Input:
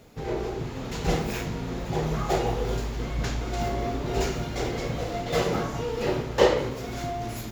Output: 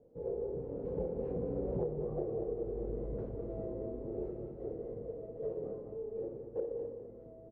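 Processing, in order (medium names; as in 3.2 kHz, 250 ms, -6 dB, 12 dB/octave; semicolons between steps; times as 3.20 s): Doppler pass-by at 1.86 s, 25 m/s, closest 2.5 m; resonant low-pass 480 Hz, resonance Q 4.9; on a send: feedback delay 204 ms, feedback 36%, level -9 dB; on the sum: compression 16:1, threshold -42 dBFS, peak gain reduction 27 dB; trim +9.5 dB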